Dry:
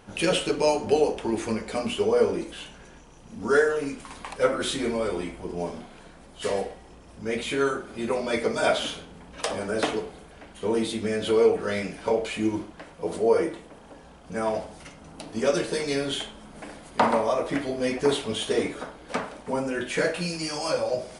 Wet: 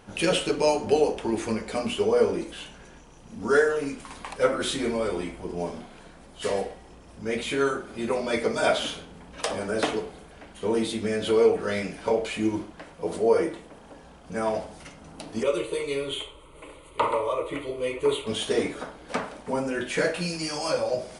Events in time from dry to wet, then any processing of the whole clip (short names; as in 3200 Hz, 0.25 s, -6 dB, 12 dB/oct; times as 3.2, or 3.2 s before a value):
15.43–18.27 fixed phaser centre 1100 Hz, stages 8